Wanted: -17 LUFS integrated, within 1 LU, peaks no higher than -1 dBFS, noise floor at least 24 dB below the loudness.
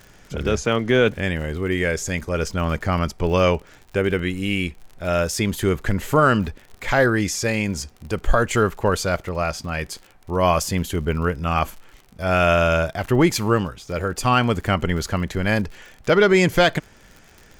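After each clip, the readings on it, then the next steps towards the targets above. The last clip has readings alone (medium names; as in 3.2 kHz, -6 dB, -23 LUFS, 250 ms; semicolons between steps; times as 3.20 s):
tick rate 54 per s; loudness -21.5 LUFS; peak level -5.5 dBFS; loudness target -17.0 LUFS
-> de-click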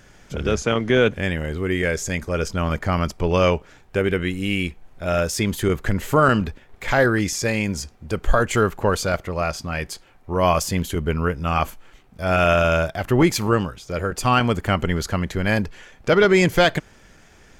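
tick rate 0.45 per s; loudness -21.5 LUFS; peak level -4.5 dBFS; loudness target -17.0 LUFS
-> trim +4.5 dB; peak limiter -1 dBFS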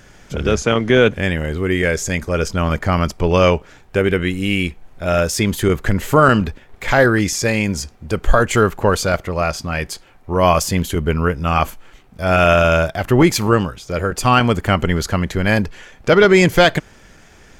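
loudness -17.0 LUFS; peak level -1.0 dBFS; noise floor -46 dBFS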